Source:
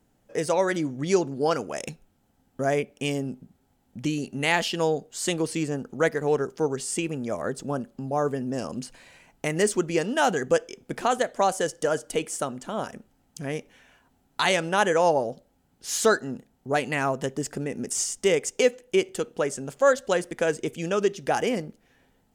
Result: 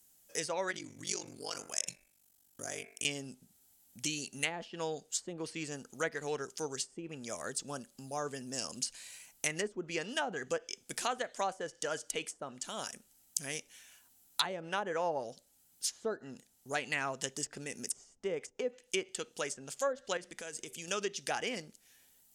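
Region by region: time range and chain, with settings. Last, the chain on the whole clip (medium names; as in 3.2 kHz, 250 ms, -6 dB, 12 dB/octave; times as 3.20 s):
0.71–3.05 s: de-hum 84.61 Hz, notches 31 + compression 2:1, threshold -28 dBFS + ring modulator 24 Hz
20.17–20.88 s: treble shelf 4.8 kHz -10.5 dB + de-hum 193.4 Hz, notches 4 + compression 4:1, threshold -31 dBFS
whole clip: pre-emphasis filter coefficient 0.9; low-pass that closes with the level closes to 630 Hz, closed at -30 dBFS; treble shelf 3.8 kHz +9.5 dB; trim +4.5 dB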